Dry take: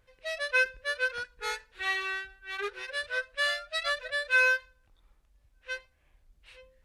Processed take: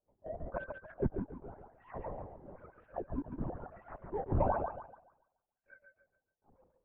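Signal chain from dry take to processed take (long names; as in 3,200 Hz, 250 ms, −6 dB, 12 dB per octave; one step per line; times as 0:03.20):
three sine waves on the formant tracks
first difference
in parallel at 0 dB: downward compressor, threshold −50 dBFS, peak gain reduction 17.5 dB
on the sum: sample-and-hold swept by an LFO 20×, swing 160% 1 Hz
transistor ladder low-pass 980 Hz, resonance 25%
feedback echo with a high-pass in the loop 142 ms, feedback 36%, high-pass 260 Hz, level −4.5 dB
linear-prediction vocoder at 8 kHz whisper
level +10 dB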